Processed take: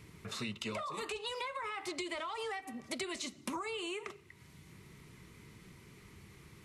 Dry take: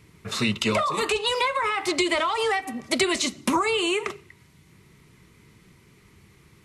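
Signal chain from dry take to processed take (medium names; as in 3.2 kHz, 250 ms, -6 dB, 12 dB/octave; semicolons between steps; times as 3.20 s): compression 2:1, threshold -49 dBFS, peak gain reduction 17 dB; trim -1 dB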